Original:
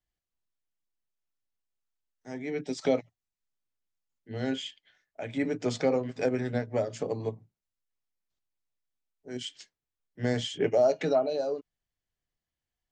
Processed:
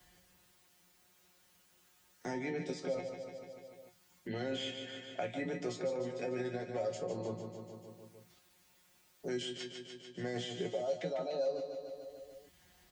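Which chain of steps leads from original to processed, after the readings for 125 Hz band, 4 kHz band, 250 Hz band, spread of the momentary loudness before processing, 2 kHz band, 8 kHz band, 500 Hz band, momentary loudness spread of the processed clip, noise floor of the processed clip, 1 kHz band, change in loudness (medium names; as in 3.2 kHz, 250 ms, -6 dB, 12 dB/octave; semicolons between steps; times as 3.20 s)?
-8.5 dB, -4.0 dB, -8.5 dB, 15 LU, -5.5 dB, -5.5 dB, -8.0 dB, 16 LU, -68 dBFS, -7.0 dB, -9.5 dB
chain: high-pass 49 Hz; dynamic bell 570 Hz, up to +5 dB, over -35 dBFS, Q 1.1; reverse; compression 6:1, threshold -37 dBFS, peak gain reduction 20.5 dB; reverse; peak limiter -33 dBFS, peak gain reduction 7 dB; feedback comb 180 Hz, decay 0.17 s, harmonics all, mix 90%; on a send: feedback delay 147 ms, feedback 51%, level -9 dB; on the sum: three bands compressed up and down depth 70%; trim +14.5 dB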